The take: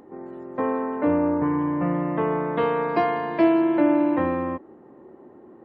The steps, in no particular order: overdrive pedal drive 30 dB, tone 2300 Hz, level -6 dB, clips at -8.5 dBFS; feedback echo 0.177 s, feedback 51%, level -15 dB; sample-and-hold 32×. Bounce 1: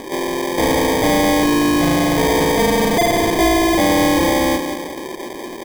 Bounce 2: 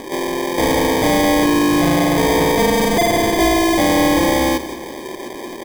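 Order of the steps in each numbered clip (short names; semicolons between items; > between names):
feedback echo > overdrive pedal > sample-and-hold; overdrive pedal > sample-and-hold > feedback echo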